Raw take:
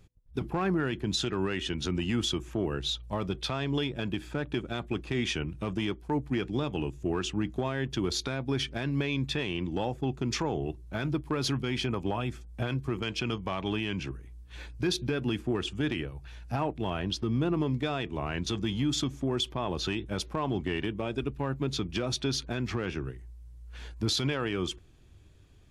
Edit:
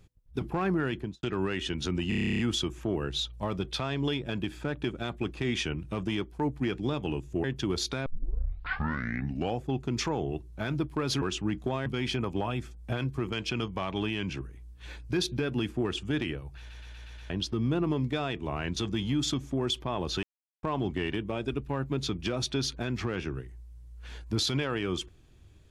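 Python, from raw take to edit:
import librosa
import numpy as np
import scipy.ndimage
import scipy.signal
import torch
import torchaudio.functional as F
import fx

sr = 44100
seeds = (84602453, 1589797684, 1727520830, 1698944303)

y = fx.studio_fade_out(x, sr, start_s=0.94, length_s=0.29)
y = fx.edit(y, sr, fx.stutter(start_s=2.09, slice_s=0.03, count=11),
    fx.move(start_s=7.14, length_s=0.64, to_s=11.56),
    fx.tape_start(start_s=8.4, length_s=1.55),
    fx.stutter_over(start_s=16.28, slice_s=0.12, count=6),
    fx.silence(start_s=19.93, length_s=0.4), tone=tone)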